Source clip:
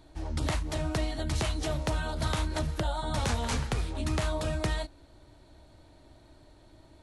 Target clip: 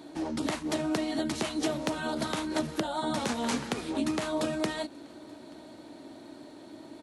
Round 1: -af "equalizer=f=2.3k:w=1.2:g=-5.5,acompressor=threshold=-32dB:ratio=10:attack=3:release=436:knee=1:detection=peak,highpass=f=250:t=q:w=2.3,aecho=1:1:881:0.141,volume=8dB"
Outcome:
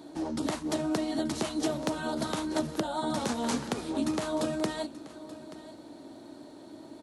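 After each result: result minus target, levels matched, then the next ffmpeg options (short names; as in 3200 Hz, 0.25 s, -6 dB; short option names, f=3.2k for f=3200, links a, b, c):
echo-to-direct +10 dB; 2000 Hz band -3.0 dB
-af "equalizer=f=2.3k:w=1.2:g=-5.5,acompressor=threshold=-32dB:ratio=10:attack=3:release=436:knee=1:detection=peak,highpass=f=250:t=q:w=2.3,aecho=1:1:881:0.0447,volume=8dB"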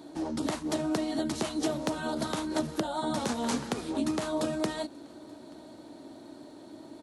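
2000 Hz band -3.0 dB
-af "acompressor=threshold=-32dB:ratio=10:attack=3:release=436:knee=1:detection=peak,highpass=f=250:t=q:w=2.3,aecho=1:1:881:0.0447,volume=8dB"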